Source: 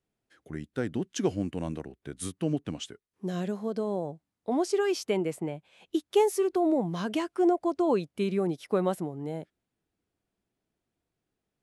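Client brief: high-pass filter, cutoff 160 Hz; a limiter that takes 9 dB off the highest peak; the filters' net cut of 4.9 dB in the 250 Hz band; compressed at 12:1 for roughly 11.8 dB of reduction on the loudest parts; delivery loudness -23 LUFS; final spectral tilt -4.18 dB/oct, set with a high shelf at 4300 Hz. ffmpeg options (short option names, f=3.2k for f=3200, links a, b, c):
-af "highpass=160,equalizer=f=250:t=o:g=-7,highshelf=f=4.3k:g=8,acompressor=threshold=-31dB:ratio=12,volume=16.5dB,alimiter=limit=-11.5dB:level=0:latency=1"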